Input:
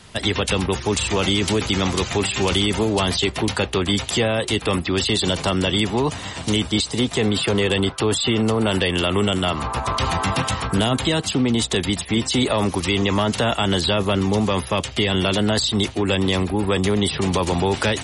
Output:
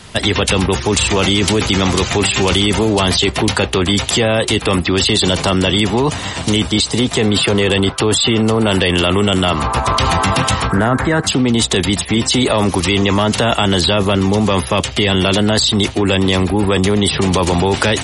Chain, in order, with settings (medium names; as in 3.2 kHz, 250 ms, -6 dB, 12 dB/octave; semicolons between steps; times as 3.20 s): 10.72–11.27 s: resonant high shelf 2.3 kHz -10.5 dB, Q 3; in parallel at -2 dB: compressor with a negative ratio -22 dBFS; on the sum: trim +2 dB